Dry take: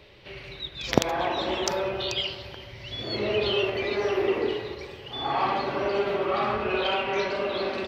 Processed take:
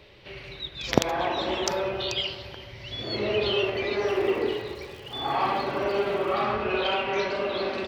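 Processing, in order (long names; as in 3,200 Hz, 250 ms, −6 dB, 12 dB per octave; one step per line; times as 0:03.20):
0:04.07–0:06.41: surface crackle 230 per second −41 dBFS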